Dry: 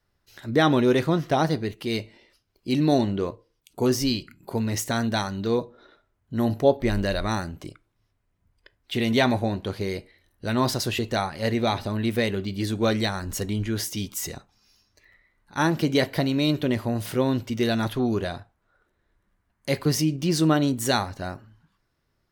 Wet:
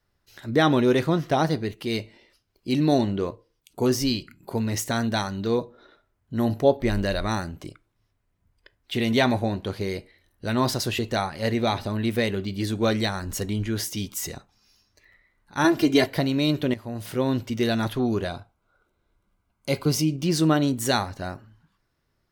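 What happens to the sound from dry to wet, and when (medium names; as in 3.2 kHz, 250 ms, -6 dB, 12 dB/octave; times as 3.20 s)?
15.64–16.06 s: comb 2.9 ms, depth 93%
16.74–17.33 s: fade in, from -13 dB
18.29–20.23 s: Butterworth band-stop 1.8 kHz, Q 4.5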